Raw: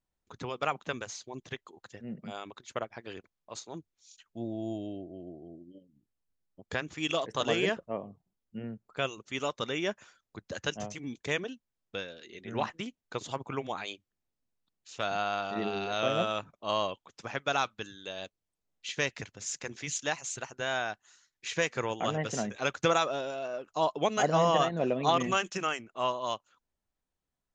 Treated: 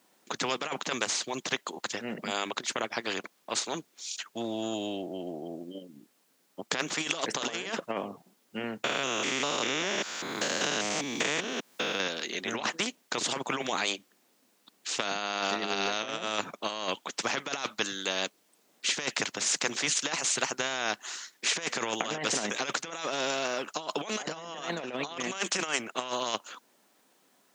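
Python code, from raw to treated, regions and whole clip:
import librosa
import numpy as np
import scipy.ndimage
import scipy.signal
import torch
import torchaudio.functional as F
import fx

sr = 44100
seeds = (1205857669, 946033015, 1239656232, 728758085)

y = fx.chain(x, sr, fx.spec_steps(hold_ms=200),
    fx.band_squash(depth_pct=100), at=(8.84, 12.08))
y = fx.over_compress(y, sr, threshold_db=-35.0, ratio=-0.5)
y = scipy.signal.sosfilt(scipy.signal.butter(4, 220.0, 'highpass', fs=sr, output='sos'), y)
y = fx.spectral_comp(y, sr, ratio=2.0)
y = F.gain(torch.from_numpy(y), 8.5).numpy()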